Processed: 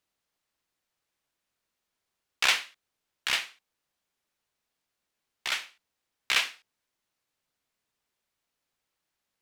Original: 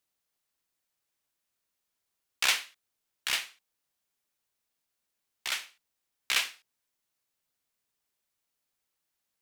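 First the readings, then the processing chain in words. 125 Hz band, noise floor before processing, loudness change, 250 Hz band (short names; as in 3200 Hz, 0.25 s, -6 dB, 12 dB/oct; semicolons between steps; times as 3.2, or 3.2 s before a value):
n/a, -84 dBFS, +2.0 dB, +4.0 dB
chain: high shelf 7000 Hz -10.5 dB; gain +4 dB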